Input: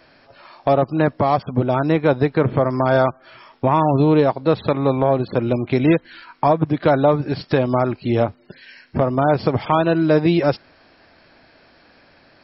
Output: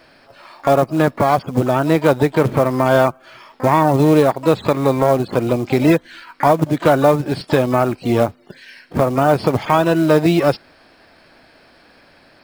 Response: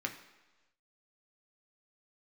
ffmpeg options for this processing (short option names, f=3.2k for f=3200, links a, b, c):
-filter_complex "[0:a]equalizer=f=94:w=1.1:g=-2.5,acrusher=bits=6:mode=log:mix=0:aa=0.000001,asplit=2[a][b];[b]asetrate=88200,aresample=44100,atempo=0.5,volume=-15dB[c];[a][c]amix=inputs=2:normalize=0,volume=2.5dB"